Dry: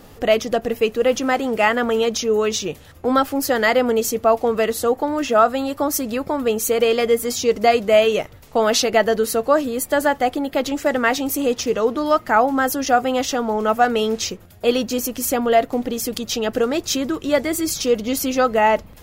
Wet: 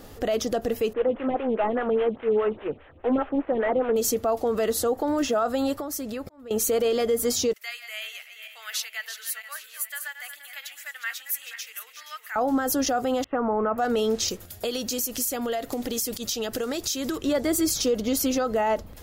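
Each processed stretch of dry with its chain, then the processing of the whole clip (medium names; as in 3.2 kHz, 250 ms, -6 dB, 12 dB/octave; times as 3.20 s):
0.93–3.96 s: CVSD coder 16 kbps + lamp-driven phase shifter 4.9 Hz
5.76–6.51 s: compression 4:1, threshold -29 dBFS + slow attack 542 ms + tape noise reduction on one side only decoder only
7.53–12.36 s: backward echo that repeats 237 ms, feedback 51%, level -9.5 dB + Chebyshev high-pass 2 kHz, order 3 + peaking EQ 5.3 kHz -10.5 dB 1.6 oct
13.24–13.78 s: steep low-pass 2.5 kHz 48 dB/octave + expander -30 dBFS + peaking EQ 1.1 kHz +7 dB 0.6 oct
14.28–17.18 s: treble shelf 2.7 kHz +11.5 dB + compression 12:1, threshold -23 dBFS
whole clip: dynamic bell 2.2 kHz, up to -5 dB, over -36 dBFS, Q 1.7; peak limiter -15 dBFS; fifteen-band graphic EQ 160 Hz -5 dB, 1 kHz -3 dB, 2.5 kHz -3 dB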